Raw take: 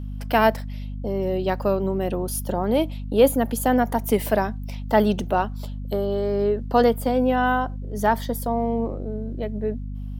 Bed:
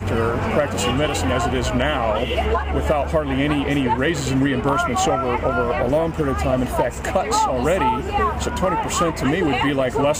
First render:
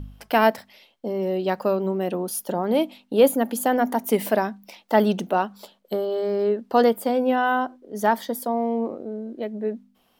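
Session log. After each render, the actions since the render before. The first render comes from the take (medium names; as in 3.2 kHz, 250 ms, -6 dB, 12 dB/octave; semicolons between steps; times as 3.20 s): de-hum 50 Hz, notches 5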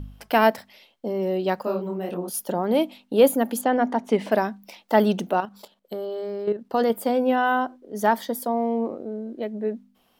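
1.62–2.34 s: detune thickener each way 52 cents; 3.61–4.32 s: distance through air 120 m; 5.32–6.90 s: level held to a coarse grid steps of 10 dB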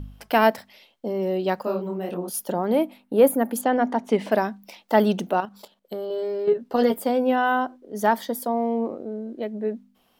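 2.75–3.56 s: high-order bell 4.5 kHz -8.5 dB; 6.09–6.99 s: doubling 12 ms -2.5 dB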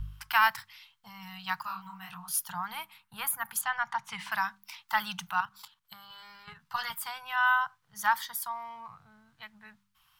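elliptic band-stop 140–1000 Hz, stop band 40 dB; peaking EQ 1.4 kHz +3.5 dB 0.44 oct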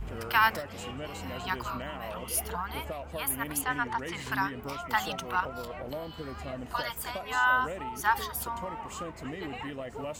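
add bed -19 dB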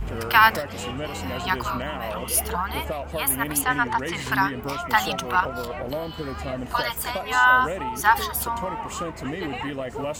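trim +8 dB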